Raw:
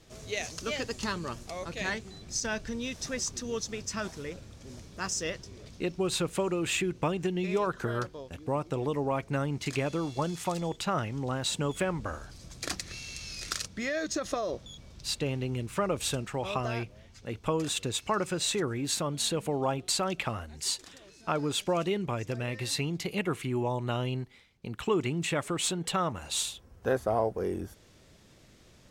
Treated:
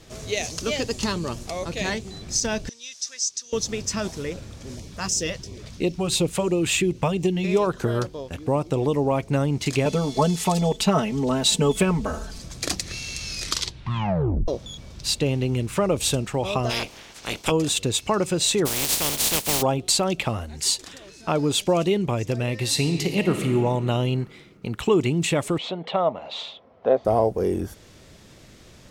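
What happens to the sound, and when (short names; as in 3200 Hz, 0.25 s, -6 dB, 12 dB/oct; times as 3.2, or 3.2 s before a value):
2.69–3.53 band-pass 5800 Hz, Q 1.9
4.74–7.45 LFO notch sine 2.9 Hz 310–1600 Hz
9.85–12.42 comb 4.6 ms, depth 97%
13.42 tape stop 1.06 s
16.69–17.5 spectral limiter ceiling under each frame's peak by 27 dB
18.65–19.61 spectral contrast lowered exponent 0.2
22.65–23.46 reverb throw, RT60 2.5 s, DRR 5.5 dB
25.58–27.05 speaker cabinet 280–3200 Hz, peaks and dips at 340 Hz -7 dB, 640 Hz +9 dB, 1600 Hz -9 dB, 2700 Hz -6 dB
whole clip: dynamic EQ 1500 Hz, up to -8 dB, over -48 dBFS, Q 1.2; gain +9 dB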